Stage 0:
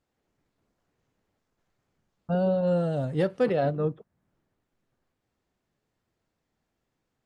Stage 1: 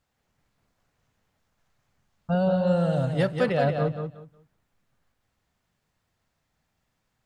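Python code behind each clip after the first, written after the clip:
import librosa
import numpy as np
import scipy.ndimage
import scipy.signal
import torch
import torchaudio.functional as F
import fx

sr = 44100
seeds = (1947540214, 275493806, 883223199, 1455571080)

y = fx.peak_eq(x, sr, hz=350.0, db=-10.0, octaves=1.3)
y = fx.echo_feedback(y, sr, ms=182, feedback_pct=22, wet_db=-6.5)
y = y * librosa.db_to_amplitude(5.5)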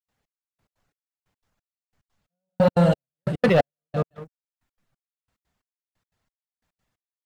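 y = fx.step_gate(x, sr, bpm=179, pattern='.xx....x', floor_db=-60.0, edge_ms=4.5)
y = fx.dereverb_blind(y, sr, rt60_s=0.66)
y = fx.leveller(y, sr, passes=2)
y = y * librosa.db_to_amplitude(3.0)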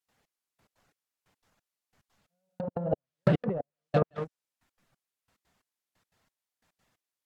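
y = fx.env_lowpass_down(x, sr, base_hz=690.0, full_db=-16.0)
y = fx.low_shelf(y, sr, hz=110.0, db=-10.0)
y = fx.over_compress(y, sr, threshold_db=-25.0, ratio=-0.5)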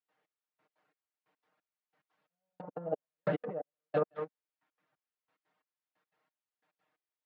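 y = fx.bandpass_edges(x, sr, low_hz=310.0, high_hz=2500.0)
y = y + 0.89 * np.pad(y, (int(6.5 * sr / 1000.0), 0))[:len(y)]
y = y * librosa.db_to_amplitude(-6.5)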